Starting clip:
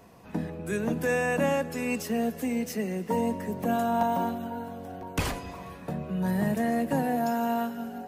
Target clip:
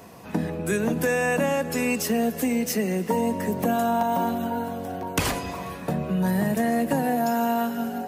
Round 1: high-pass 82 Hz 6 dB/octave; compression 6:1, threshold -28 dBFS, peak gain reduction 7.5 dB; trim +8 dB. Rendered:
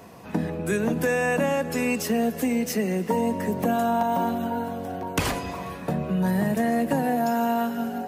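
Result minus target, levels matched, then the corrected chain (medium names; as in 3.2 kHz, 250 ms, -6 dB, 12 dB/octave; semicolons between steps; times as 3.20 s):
8 kHz band -2.5 dB
high-pass 82 Hz 6 dB/octave; compression 6:1, threshold -28 dBFS, peak gain reduction 7.5 dB; treble shelf 5 kHz +4 dB; trim +8 dB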